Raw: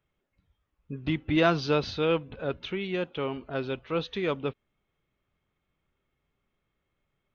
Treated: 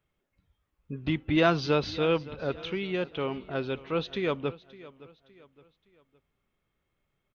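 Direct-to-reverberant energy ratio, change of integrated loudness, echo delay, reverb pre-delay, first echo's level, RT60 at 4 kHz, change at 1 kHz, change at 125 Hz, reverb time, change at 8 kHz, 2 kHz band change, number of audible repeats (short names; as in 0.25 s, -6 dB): none, 0.0 dB, 0.565 s, none, -19.0 dB, none, 0.0 dB, 0.0 dB, none, n/a, 0.0 dB, 2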